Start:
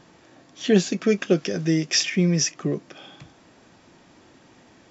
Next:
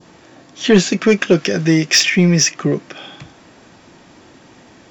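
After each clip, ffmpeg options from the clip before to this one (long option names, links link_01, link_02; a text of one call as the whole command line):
ffmpeg -i in.wav -af "adynamicequalizer=threshold=0.01:dfrequency=1900:dqfactor=0.73:tfrequency=1900:tqfactor=0.73:attack=5:release=100:ratio=0.375:range=2.5:mode=boostabove:tftype=bell,acontrast=87,volume=1dB" out.wav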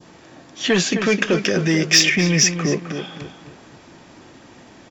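ffmpeg -i in.wav -filter_complex "[0:a]acrossover=split=660|1100[link_01][link_02][link_03];[link_01]alimiter=limit=-12dB:level=0:latency=1[link_04];[link_04][link_02][link_03]amix=inputs=3:normalize=0,asplit=2[link_05][link_06];[link_06]adelay=260,lowpass=frequency=2600:poles=1,volume=-8dB,asplit=2[link_07][link_08];[link_08]adelay=260,lowpass=frequency=2600:poles=1,volume=0.36,asplit=2[link_09][link_10];[link_10]adelay=260,lowpass=frequency=2600:poles=1,volume=0.36,asplit=2[link_11][link_12];[link_12]adelay=260,lowpass=frequency=2600:poles=1,volume=0.36[link_13];[link_05][link_07][link_09][link_11][link_13]amix=inputs=5:normalize=0,volume=-1dB" out.wav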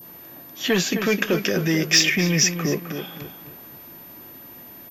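ffmpeg -i in.wav -af "aeval=exprs='val(0)+0.0126*sin(2*PI*13000*n/s)':channel_layout=same,volume=-3dB" out.wav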